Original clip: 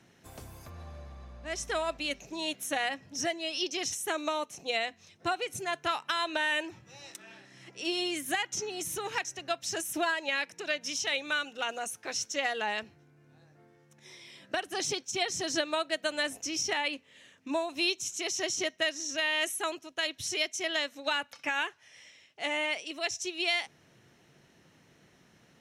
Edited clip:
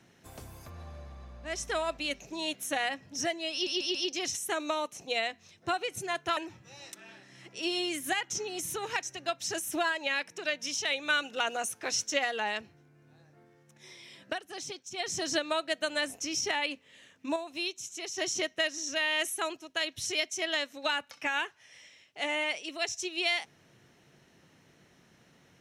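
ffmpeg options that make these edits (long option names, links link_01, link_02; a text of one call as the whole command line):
ffmpeg -i in.wav -filter_complex "[0:a]asplit=11[link_01][link_02][link_03][link_04][link_05][link_06][link_07][link_08][link_09][link_10][link_11];[link_01]atrim=end=3.672[link_12];[link_02]atrim=start=3.528:end=3.672[link_13];[link_03]atrim=start=3.528:end=3.672[link_14];[link_04]atrim=start=3.528:end=5.952[link_15];[link_05]atrim=start=6.588:end=11.312[link_16];[link_06]atrim=start=11.308:end=12.412,asetpts=PTS-STARTPTS,volume=3dB[link_17];[link_07]atrim=start=12.408:end=14.62,asetpts=PTS-STARTPTS,afade=type=out:start_time=2.052:duration=0.16:curve=qsin:silence=0.398107[link_18];[link_08]atrim=start=14.62:end=15.19,asetpts=PTS-STARTPTS,volume=-8dB[link_19];[link_09]atrim=start=15.19:end=17.582,asetpts=PTS-STARTPTS,afade=type=in:duration=0.16:curve=qsin:silence=0.398107[link_20];[link_10]atrim=start=17.578:end=18.402,asetpts=PTS-STARTPTS,volume=-5.5dB[link_21];[link_11]atrim=start=18.398[link_22];[link_12][link_13]acrossfade=duration=0.004:curve1=hsin:curve2=hsin[link_23];[link_23][link_14]acrossfade=duration=0.004:curve1=hsin:curve2=hsin[link_24];[link_24][link_15]acrossfade=duration=0.004:curve1=hsin:curve2=hsin[link_25];[link_25][link_16]acrossfade=duration=0.004:curve1=hsin:curve2=hsin[link_26];[link_26][link_17]acrossfade=duration=0.004:curve1=hsin:curve2=hsin[link_27];[link_18][link_19][link_20]concat=n=3:v=0:a=1[link_28];[link_27][link_28]acrossfade=duration=0.004:curve1=hsin:curve2=hsin[link_29];[link_29][link_21]acrossfade=duration=0.004:curve1=hsin:curve2=hsin[link_30];[link_30][link_22]acrossfade=duration=0.004:curve1=hsin:curve2=hsin" out.wav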